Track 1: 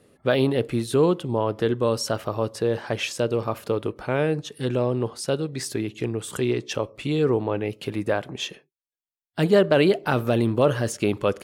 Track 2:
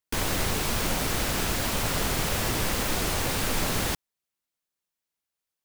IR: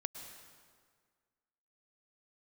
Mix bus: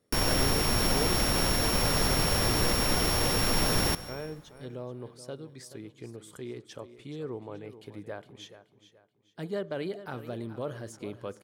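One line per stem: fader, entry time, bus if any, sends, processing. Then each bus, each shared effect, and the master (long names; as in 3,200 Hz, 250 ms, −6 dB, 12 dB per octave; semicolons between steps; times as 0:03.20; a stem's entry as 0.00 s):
−16.5 dB, 0.00 s, send −24 dB, echo send −13 dB, notch filter 2,700 Hz, Q 8.3; pitch vibrato 4.6 Hz 25 cents
−2.5 dB, 0.00 s, send −4.5 dB, no echo send, samples sorted by size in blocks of 8 samples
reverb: on, RT60 1.8 s, pre-delay 97 ms
echo: repeating echo 428 ms, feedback 34%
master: no processing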